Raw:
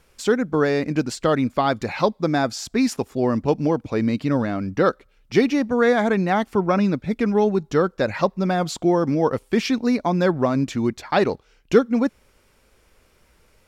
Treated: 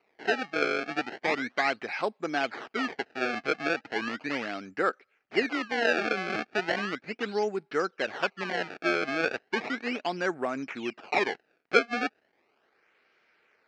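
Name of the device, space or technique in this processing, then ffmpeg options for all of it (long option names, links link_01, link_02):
circuit-bent sampling toy: -af "acrusher=samples=26:mix=1:aa=0.000001:lfo=1:lforange=41.6:lforate=0.36,highpass=470,equalizer=frequency=550:width_type=q:width=4:gain=-7,equalizer=frequency=1000:width_type=q:width=4:gain=-8,equalizer=frequency=1600:width_type=q:width=4:gain=3,equalizer=frequency=2300:width_type=q:width=4:gain=4,equalizer=frequency=3500:width_type=q:width=4:gain=-8,lowpass=frequency=4400:width=0.5412,lowpass=frequency=4400:width=1.3066,volume=-3.5dB"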